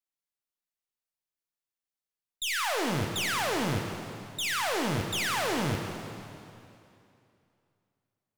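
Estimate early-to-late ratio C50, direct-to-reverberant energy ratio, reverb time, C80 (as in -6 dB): 4.0 dB, 3.0 dB, 2.7 s, 5.0 dB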